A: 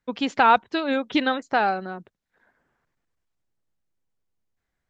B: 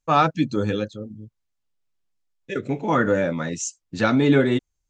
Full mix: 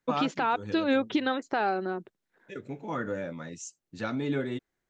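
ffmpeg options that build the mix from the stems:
-filter_complex "[0:a]highpass=120,equalizer=f=360:w=3.1:g=8,volume=0.841[s0];[1:a]volume=0.224[s1];[s0][s1]amix=inputs=2:normalize=0,alimiter=limit=0.158:level=0:latency=1:release=170"

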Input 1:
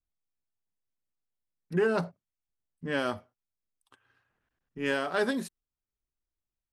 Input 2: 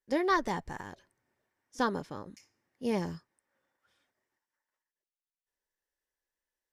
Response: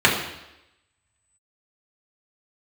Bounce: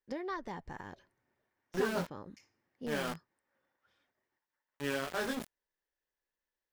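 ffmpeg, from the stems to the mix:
-filter_complex "[0:a]flanger=delay=20:depth=3.2:speed=0.65,aeval=exprs='val(0)*gte(abs(val(0)),0.02)':c=same,volume=0.708[s0];[1:a]equalizer=f=9600:t=o:w=1.1:g=-12.5,acompressor=threshold=0.00891:ratio=2.5,volume=0.944[s1];[s0][s1]amix=inputs=2:normalize=0"

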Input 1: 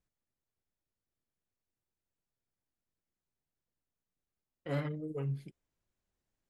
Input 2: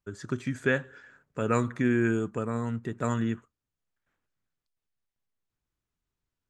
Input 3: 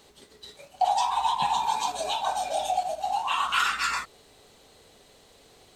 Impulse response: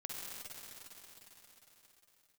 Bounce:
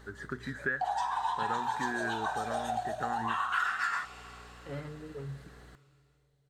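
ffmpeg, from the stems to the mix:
-filter_complex "[0:a]volume=0.473,asplit=2[s0][s1];[s1]volume=0.106[s2];[1:a]bandreject=f=60:t=h:w=6,bandreject=f=120:t=h:w=6,volume=0.398[s3];[2:a]aeval=exprs='val(0)+0.00316*(sin(2*PI*60*n/s)+sin(2*PI*2*60*n/s)/2+sin(2*PI*3*60*n/s)/3+sin(2*PI*4*60*n/s)/4+sin(2*PI*5*60*n/s)/5)':c=same,volume=0.631,asplit=2[s4][s5];[s5]volume=0.168[s6];[s3][s4]amix=inputs=2:normalize=0,firequalizer=gain_entry='entry(750,0);entry(1700,15);entry(2400,-5)':delay=0.05:min_phase=1,acompressor=threshold=0.0251:ratio=3,volume=1[s7];[3:a]atrim=start_sample=2205[s8];[s2][s6]amix=inputs=2:normalize=0[s9];[s9][s8]afir=irnorm=-1:irlink=0[s10];[s0][s7][s10]amix=inputs=3:normalize=0,equalizer=f=420:w=4.6:g=4"

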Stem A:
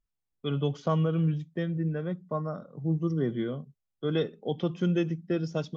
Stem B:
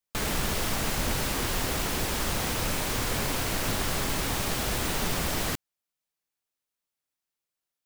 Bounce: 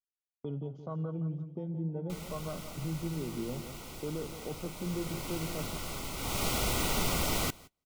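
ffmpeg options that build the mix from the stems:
-filter_complex "[0:a]afwtdn=0.0141,alimiter=level_in=1.78:limit=0.0631:level=0:latency=1:release=455,volume=0.562,volume=1,asplit=2[s0][s1];[s1]volume=0.299[s2];[1:a]adelay=1950,volume=0.841,afade=t=in:st=4.72:d=0.64:silence=0.473151,afade=t=in:st=6.16:d=0.3:silence=0.375837,asplit=2[s3][s4];[s4]volume=0.0668[s5];[s2][s5]amix=inputs=2:normalize=0,aecho=0:1:171|342|513|684|855:1|0.38|0.144|0.0549|0.0209[s6];[s0][s3][s6]amix=inputs=3:normalize=0,agate=range=0.0562:threshold=0.00355:ratio=16:detection=peak,asuperstop=centerf=1700:order=12:qfactor=4.6"

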